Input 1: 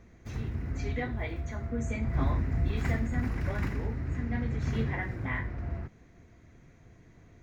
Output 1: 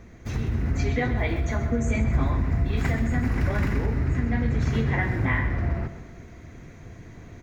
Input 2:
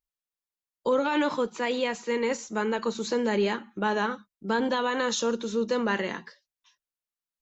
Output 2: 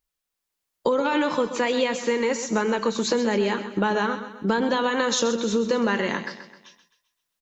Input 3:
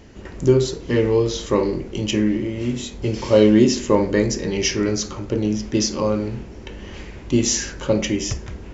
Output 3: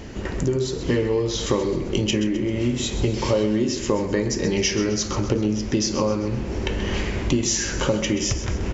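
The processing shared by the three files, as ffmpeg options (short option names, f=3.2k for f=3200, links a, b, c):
-filter_complex "[0:a]acompressor=threshold=-32dB:ratio=6,asplit=2[a][b];[b]aecho=0:1:130|260|390|520|650:0.266|0.122|0.0563|0.0259|0.0119[c];[a][c]amix=inputs=2:normalize=0,dynaudnorm=f=210:g=5:m=3.5dB,volume=8.5dB"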